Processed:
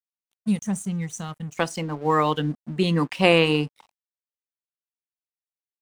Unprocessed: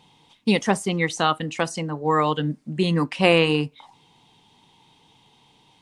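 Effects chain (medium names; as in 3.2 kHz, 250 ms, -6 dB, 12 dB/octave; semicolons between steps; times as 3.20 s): time-frequency box 0.36–1.57 s, 220–5700 Hz -17 dB; crossover distortion -45.5 dBFS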